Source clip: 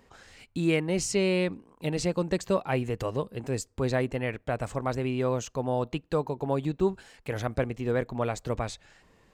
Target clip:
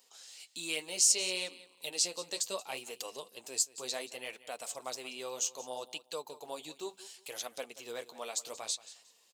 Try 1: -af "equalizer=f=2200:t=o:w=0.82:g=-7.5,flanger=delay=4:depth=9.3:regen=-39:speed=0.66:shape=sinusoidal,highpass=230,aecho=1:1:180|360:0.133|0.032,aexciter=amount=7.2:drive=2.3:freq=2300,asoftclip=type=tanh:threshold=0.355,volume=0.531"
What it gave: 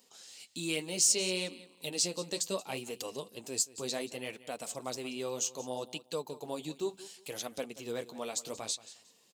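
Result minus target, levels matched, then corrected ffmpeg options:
250 Hz band +9.5 dB; saturation: distortion +12 dB
-af "equalizer=f=2200:t=o:w=0.82:g=-7.5,flanger=delay=4:depth=9.3:regen=-39:speed=0.66:shape=sinusoidal,highpass=570,aecho=1:1:180|360:0.133|0.032,aexciter=amount=7.2:drive=2.3:freq=2300,asoftclip=type=tanh:threshold=0.841,volume=0.531"

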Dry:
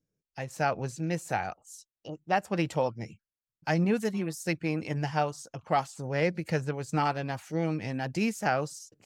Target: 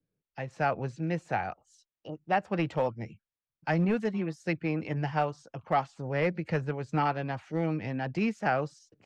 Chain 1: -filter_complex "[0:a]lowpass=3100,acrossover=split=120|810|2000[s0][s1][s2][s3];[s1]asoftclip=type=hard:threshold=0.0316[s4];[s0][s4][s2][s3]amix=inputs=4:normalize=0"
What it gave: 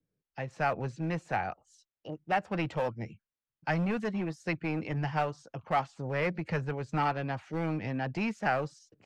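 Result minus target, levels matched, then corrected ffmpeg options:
hard clipper: distortion +11 dB
-filter_complex "[0:a]lowpass=3100,acrossover=split=120|810|2000[s0][s1][s2][s3];[s1]asoftclip=type=hard:threshold=0.0708[s4];[s0][s4][s2][s3]amix=inputs=4:normalize=0"

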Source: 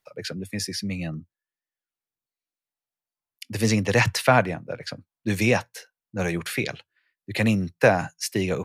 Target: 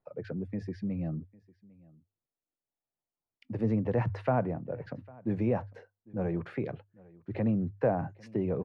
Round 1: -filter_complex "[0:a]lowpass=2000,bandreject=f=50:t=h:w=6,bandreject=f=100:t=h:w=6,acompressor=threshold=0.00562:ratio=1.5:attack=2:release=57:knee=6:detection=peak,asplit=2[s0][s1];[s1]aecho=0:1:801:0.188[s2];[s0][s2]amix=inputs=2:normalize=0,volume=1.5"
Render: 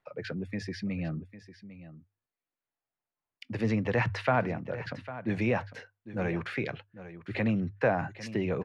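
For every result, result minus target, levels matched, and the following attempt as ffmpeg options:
2 kHz band +11.0 dB; echo-to-direct +9.5 dB
-filter_complex "[0:a]lowpass=730,bandreject=f=50:t=h:w=6,bandreject=f=100:t=h:w=6,acompressor=threshold=0.00562:ratio=1.5:attack=2:release=57:knee=6:detection=peak,asplit=2[s0][s1];[s1]aecho=0:1:801:0.188[s2];[s0][s2]amix=inputs=2:normalize=0,volume=1.5"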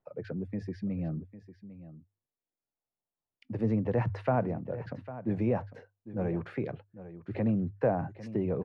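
echo-to-direct +9.5 dB
-filter_complex "[0:a]lowpass=730,bandreject=f=50:t=h:w=6,bandreject=f=100:t=h:w=6,acompressor=threshold=0.00562:ratio=1.5:attack=2:release=57:knee=6:detection=peak,asplit=2[s0][s1];[s1]aecho=0:1:801:0.0631[s2];[s0][s2]amix=inputs=2:normalize=0,volume=1.5"

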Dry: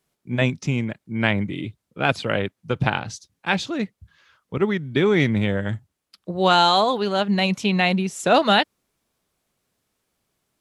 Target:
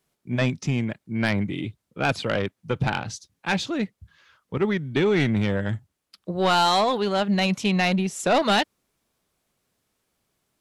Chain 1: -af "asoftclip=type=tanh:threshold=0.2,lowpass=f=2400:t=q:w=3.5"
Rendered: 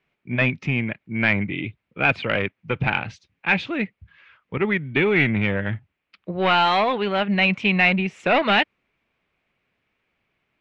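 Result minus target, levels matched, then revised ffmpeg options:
2 kHz band +5.0 dB
-af "asoftclip=type=tanh:threshold=0.2"

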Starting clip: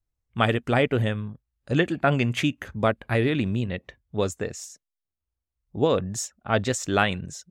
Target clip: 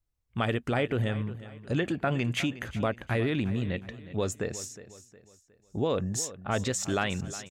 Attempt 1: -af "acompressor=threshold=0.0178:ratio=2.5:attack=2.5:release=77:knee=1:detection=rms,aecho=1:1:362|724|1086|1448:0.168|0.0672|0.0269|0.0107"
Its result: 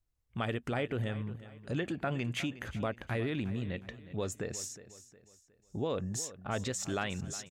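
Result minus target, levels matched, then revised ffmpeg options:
compression: peak gain reduction +6 dB
-af "acompressor=threshold=0.0562:ratio=2.5:attack=2.5:release=77:knee=1:detection=rms,aecho=1:1:362|724|1086|1448:0.168|0.0672|0.0269|0.0107"

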